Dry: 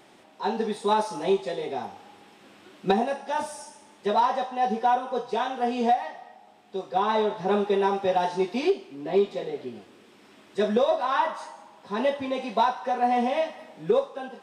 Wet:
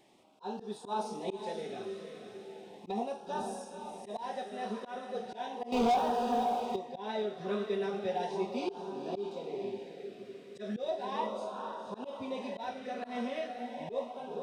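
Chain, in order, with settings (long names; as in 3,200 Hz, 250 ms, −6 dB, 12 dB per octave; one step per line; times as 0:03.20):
feedback delay with all-pass diffusion 501 ms, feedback 51%, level −7 dB
0:05.72–0:06.76: leveller curve on the samples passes 3
volume swells 117 ms
auto-filter notch sine 0.36 Hz 850–2,100 Hz
level −9 dB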